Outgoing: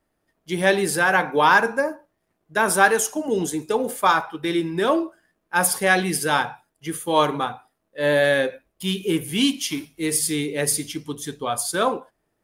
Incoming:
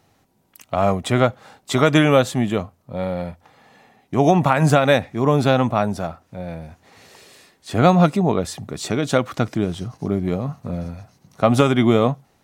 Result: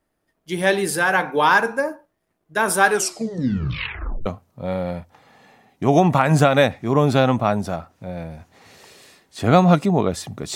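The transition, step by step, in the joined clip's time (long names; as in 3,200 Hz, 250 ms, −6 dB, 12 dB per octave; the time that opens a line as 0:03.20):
outgoing
0:02.85: tape stop 1.41 s
0:04.26: continue with incoming from 0:02.57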